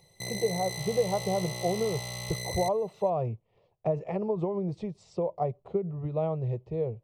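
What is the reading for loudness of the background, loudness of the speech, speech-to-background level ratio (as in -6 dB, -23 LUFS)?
-36.0 LUFS, -31.5 LUFS, 4.5 dB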